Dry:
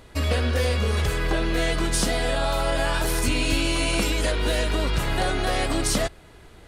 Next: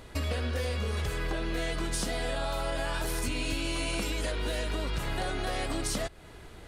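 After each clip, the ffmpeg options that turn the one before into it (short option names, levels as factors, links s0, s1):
-af "acompressor=threshold=0.0282:ratio=3"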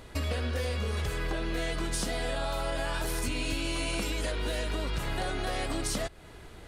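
-af anull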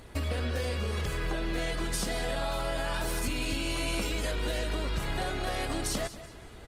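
-af "aecho=1:1:189|378|567:0.2|0.0658|0.0217" -ar 48000 -c:a libopus -b:a 24k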